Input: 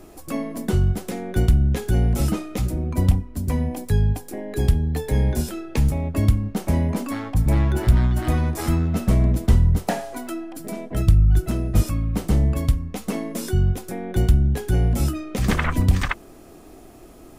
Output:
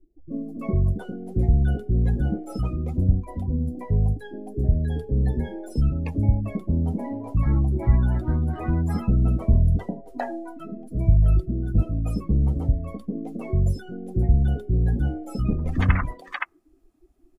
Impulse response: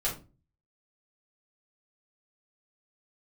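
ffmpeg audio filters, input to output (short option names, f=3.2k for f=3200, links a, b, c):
-filter_complex "[0:a]afftdn=nr=25:nf=-29,acrossover=split=480[a][b];[b]adelay=310[c];[a][c]amix=inputs=2:normalize=0,volume=-2dB"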